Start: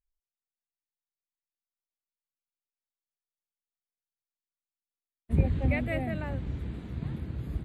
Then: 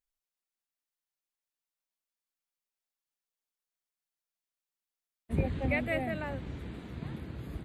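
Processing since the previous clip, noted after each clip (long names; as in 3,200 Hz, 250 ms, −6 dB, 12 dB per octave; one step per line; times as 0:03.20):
low-shelf EQ 200 Hz −11 dB
level +2 dB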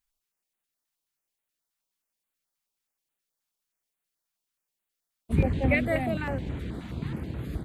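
notch on a step sequencer 9.4 Hz 440–5,300 Hz
level +7 dB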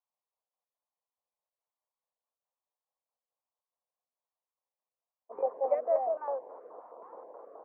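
elliptic band-pass filter 490–1,100 Hz, stop band 70 dB
level +2.5 dB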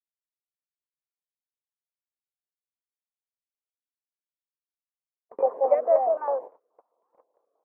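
noise gate −43 dBFS, range −33 dB
level +7.5 dB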